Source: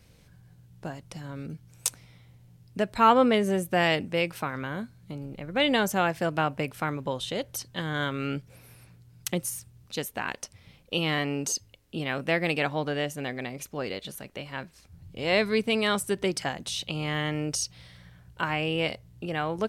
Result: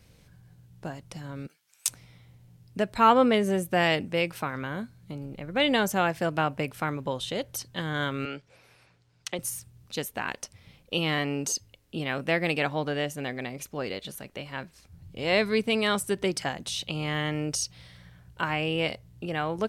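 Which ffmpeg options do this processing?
ffmpeg -i in.wav -filter_complex "[0:a]asplit=3[link_01][link_02][link_03];[link_01]afade=type=out:start_time=1.46:duration=0.02[link_04];[link_02]highpass=1400,afade=type=in:start_time=1.46:duration=0.02,afade=type=out:start_time=1.87:duration=0.02[link_05];[link_03]afade=type=in:start_time=1.87:duration=0.02[link_06];[link_04][link_05][link_06]amix=inputs=3:normalize=0,asettb=1/sr,asplit=3[link_07][link_08][link_09];[link_07]atrim=end=8.254[link_10];[link_08]atrim=start=8.25:end=9.39,asetpts=PTS-STARTPTS,afade=type=in:duration=0.004:curve=qsin,afade=type=out:start_time=1.136:duration=0.004:curve=qsin,acrossover=split=380 7200:gain=0.224 1 0.0794[link_11][link_12][link_13];[link_11][link_12][link_13]amix=inputs=3:normalize=0[link_14];[link_09]atrim=start=9.386[link_15];[link_10][link_14]acrossfade=duration=0.004:curve1=hsin:curve2=qsin[link_16];[link_16][link_15]acrossfade=duration=0.004:curve1=qsin:curve2=hsin" out.wav

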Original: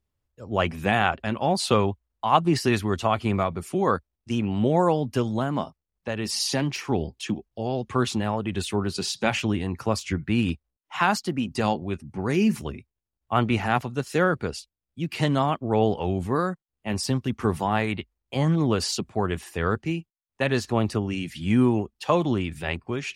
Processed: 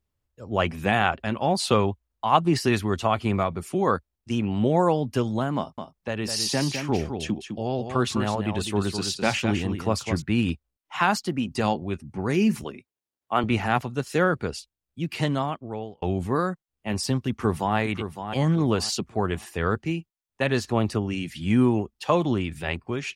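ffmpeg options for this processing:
ffmpeg -i in.wav -filter_complex "[0:a]asettb=1/sr,asplit=3[link_01][link_02][link_03];[link_01]atrim=end=5.574[link_04];[link_02]atrim=start=5.57:end=10.22,asetpts=PTS-STARTPTS,afade=type=in:duration=0.004:curve=qsin,afade=type=out:start_time=4.646:duration=0.004:curve=qsin,aecho=1:1:207:0.422,atrim=end_sample=205065[link_05];[link_03]atrim=start=10.216[link_06];[link_04][link_05]acrossfade=duration=0.004:curve1=hsin:curve2=qsin[link_07];[link_07][link_06]acrossfade=duration=0.004:curve1=qsin:curve2=hsin,asettb=1/sr,asplit=3[link_08][link_09][link_10];[link_08]atrim=end=12.644[link_11];[link_09]atrim=start=12.64:end=13.44,asetpts=PTS-STARTPTS,afade=type=in:duration=0.004:curve=qsin,afade=type=out:start_time=0.796:duration=0.004:curve=qsin,highpass=230[link_12];[link_10]atrim=start=13.436[link_13];[link_11][link_12]acrossfade=duration=0.004:curve1=hsin:curve2=qsin[link_14];[link_14][link_13]acrossfade=duration=0.004:curve1=qsin:curve2=hsin,asplit=2[link_15][link_16];[link_16]afade=type=in:start_time=17.29:duration=0.01,afade=type=out:start_time=17.77:duration=0.01,aecho=0:1:560|1120|1680:0.354813|0.106444|0.0319332[link_17];[link_15][link_17]amix=inputs=2:normalize=0,asplit=2[link_18][link_19];[link_18]atrim=end=16.02,asetpts=PTS-STARTPTS,afade=type=out:start_time=15.1:duration=0.92[link_20];[link_19]atrim=start=16.02,asetpts=PTS-STARTPTS,afade=type=in:duration=0.004:curve=hsin[link_21];[link_20][link_21]concat=n=2:v=0:a=1" out.wav

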